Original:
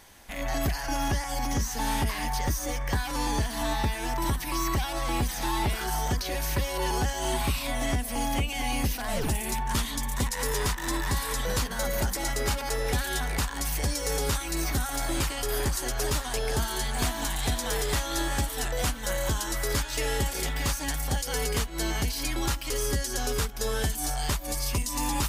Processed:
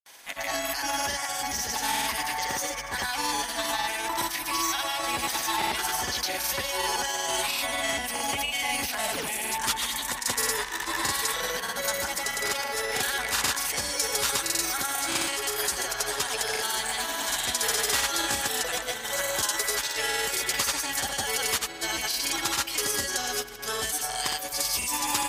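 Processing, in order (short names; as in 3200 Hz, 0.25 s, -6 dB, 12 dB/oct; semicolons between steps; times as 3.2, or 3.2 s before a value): HPF 1200 Hz 6 dB/oct; on a send: darkening echo 0.211 s, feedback 72%, low-pass 2900 Hz, level -14 dB; on the sum: grains, pitch spread up and down by 0 st; gain +7.5 dB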